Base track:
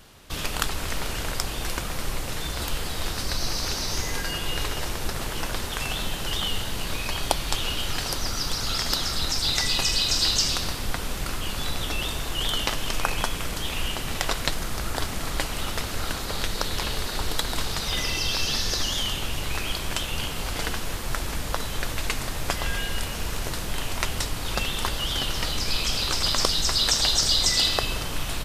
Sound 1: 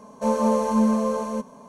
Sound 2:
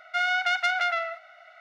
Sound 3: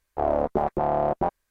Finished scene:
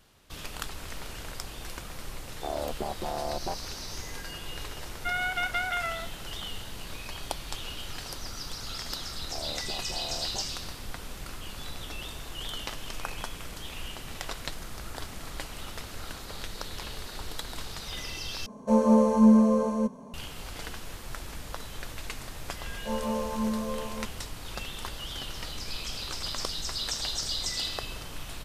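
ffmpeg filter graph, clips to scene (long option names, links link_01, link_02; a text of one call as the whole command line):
ffmpeg -i bed.wav -i cue0.wav -i cue1.wav -i cue2.wav -filter_complex "[3:a]asplit=2[link_01][link_02];[1:a]asplit=2[link_03][link_04];[0:a]volume=-10.5dB[link_05];[2:a]aresample=8000,aresample=44100[link_06];[link_03]lowshelf=frequency=480:gain=10.5[link_07];[link_05]asplit=2[link_08][link_09];[link_08]atrim=end=18.464[link_10];[link_07]atrim=end=1.68,asetpts=PTS-STARTPTS,volume=-6dB[link_11];[link_09]atrim=start=20.136[link_12];[link_01]atrim=end=1.5,asetpts=PTS-STARTPTS,volume=-10dB,afade=type=in:duration=0.004:curve=hsin,afade=type=out:start_time=1.496:duration=0.004:curve=hsin,adelay=2250[link_13];[link_06]atrim=end=1.6,asetpts=PTS-STARTPTS,volume=-5dB,afade=type=in:duration=0.004:curve=hsin,afade=type=out:start_time=1.596:duration=0.004:curve=hsin,adelay=4910[link_14];[link_02]atrim=end=1.5,asetpts=PTS-STARTPTS,volume=-17.5dB,afade=type=in:duration=0.004:curve=hsin,afade=type=out:start_time=1.496:duration=0.004:curve=hsin,adelay=9130[link_15];[link_04]atrim=end=1.68,asetpts=PTS-STARTPTS,volume=-10dB,afade=type=in:duration=0.004:curve=hsin,afade=type=out:start_time=1.676:duration=0.004:curve=hsin,adelay=22640[link_16];[link_10][link_11]acrossfade=duration=0.004:curve1=hsin:curve2=hsin[link_17];[link_17][link_12]acrossfade=duration=0.004:curve1=hsin:curve2=hsin[link_18];[link_18][link_13][link_14][link_15][link_16]amix=inputs=5:normalize=0" out.wav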